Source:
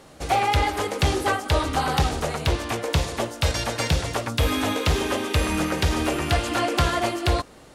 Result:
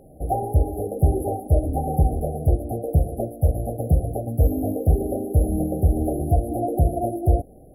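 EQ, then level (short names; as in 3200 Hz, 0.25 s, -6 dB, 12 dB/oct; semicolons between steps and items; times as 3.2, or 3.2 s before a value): brick-wall FIR band-stop 800–10000 Hz; low shelf 120 Hz +7.5 dB; 0.0 dB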